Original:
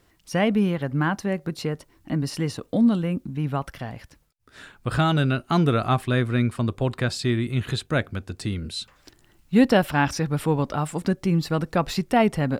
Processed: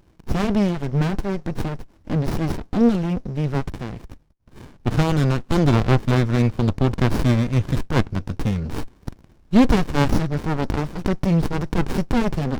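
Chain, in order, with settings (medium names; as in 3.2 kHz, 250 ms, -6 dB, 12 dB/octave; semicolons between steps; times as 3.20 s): resonant low-pass 5.6 kHz, resonance Q 6.9; sliding maximum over 65 samples; trim +5.5 dB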